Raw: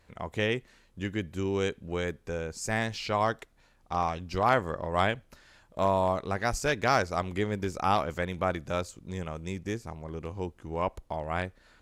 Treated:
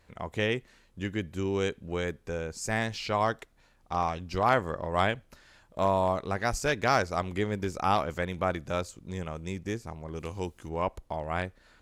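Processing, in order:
0:10.15–0:10.69: high-shelf EQ 2,600 Hz +11.5 dB

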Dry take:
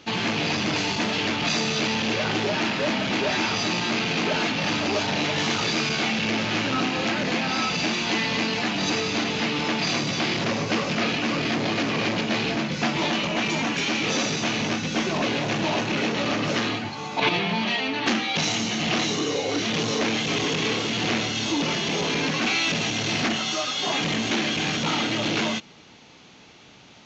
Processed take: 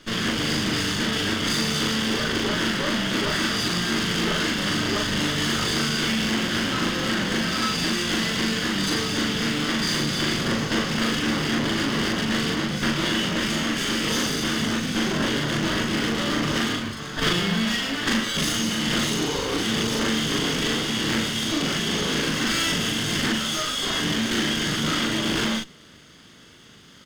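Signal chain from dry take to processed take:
lower of the sound and its delayed copy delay 0.61 ms
double-tracking delay 40 ms −2 dB

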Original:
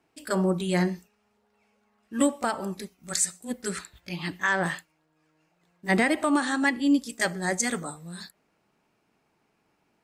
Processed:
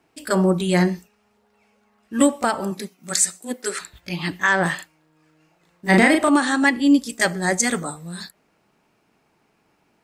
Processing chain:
0:02.70–0:03.80: high-pass filter 92 Hz → 350 Hz 24 dB per octave
0:04.75–0:06.29: double-tracking delay 38 ms −3.5 dB
level +6.5 dB

